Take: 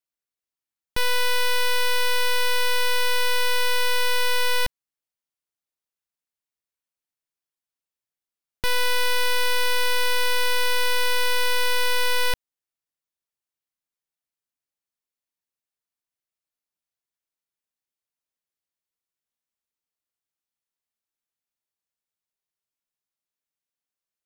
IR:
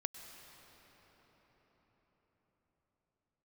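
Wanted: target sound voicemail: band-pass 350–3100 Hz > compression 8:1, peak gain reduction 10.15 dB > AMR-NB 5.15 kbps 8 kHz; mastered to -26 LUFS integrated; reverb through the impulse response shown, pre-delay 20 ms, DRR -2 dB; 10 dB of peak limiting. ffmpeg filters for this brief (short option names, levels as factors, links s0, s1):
-filter_complex "[0:a]alimiter=level_in=1.78:limit=0.0631:level=0:latency=1,volume=0.562,asplit=2[s0][s1];[1:a]atrim=start_sample=2205,adelay=20[s2];[s1][s2]afir=irnorm=-1:irlink=0,volume=1.41[s3];[s0][s3]amix=inputs=2:normalize=0,highpass=350,lowpass=3100,acompressor=threshold=0.0112:ratio=8,volume=7.5" -ar 8000 -c:a libopencore_amrnb -b:a 5150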